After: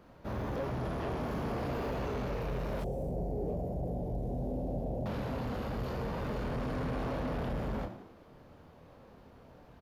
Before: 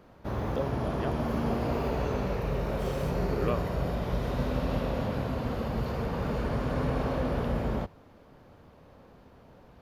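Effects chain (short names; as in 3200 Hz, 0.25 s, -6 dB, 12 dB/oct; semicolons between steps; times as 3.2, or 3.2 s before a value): doubler 24 ms -6 dB; frequency-shifting echo 89 ms, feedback 50%, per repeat +69 Hz, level -14.5 dB; soft clip -28 dBFS, distortion -11 dB; 2.84–5.06 EQ curve 750 Hz 0 dB, 1200 Hz -29 dB, 4100 Hz -23 dB, 8200 Hz -10 dB; gain -2.5 dB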